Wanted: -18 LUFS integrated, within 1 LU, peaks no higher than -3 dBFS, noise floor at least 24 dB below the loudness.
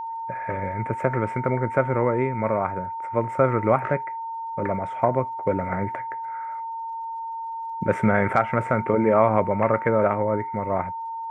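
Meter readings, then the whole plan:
ticks 44/s; steady tone 910 Hz; tone level -29 dBFS; loudness -24.5 LUFS; peak -5.0 dBFS; loudness target -18.0 LUFS
-> de-click; notch 910 Hz, Q 30; gain +6.5 dB; limiter -3 dBFS

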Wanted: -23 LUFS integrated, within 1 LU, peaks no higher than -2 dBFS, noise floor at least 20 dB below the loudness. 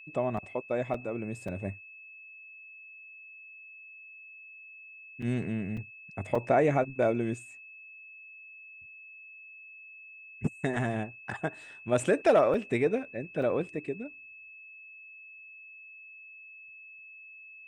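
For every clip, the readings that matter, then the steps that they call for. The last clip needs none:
dropouts 8; longest dropout 4.3 ms; steady tone 2600 Hz; tone level -47 dBFS; loudness -30.5 LUFS; peak -13.0 dBFS; loudness target -23.0 LUFS
-> interpolate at 0.37/0.94/1.48/5.22/5.77/6.35/12.54/13.42, 4.3 ms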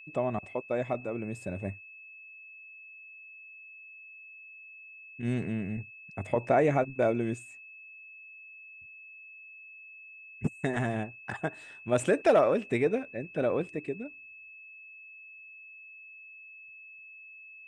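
dropouts 0; steady tone 2600 Hz; tone level -47 dBFS
-> notch 2600 Hz, Q 30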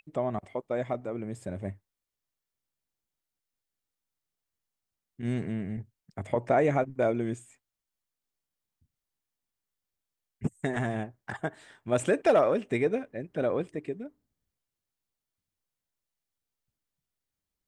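steady tone none; loudness -30.0 LUFS; peak -13.0 dBFS; loudness target -23.0 LUFS
-> gain +7 dB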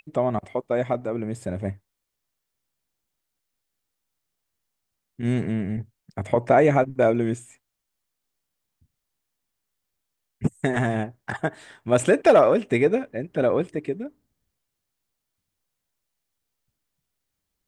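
loudness -23.5 LUFS; peak -6.0 dBFS; noise floor -81 dBFS

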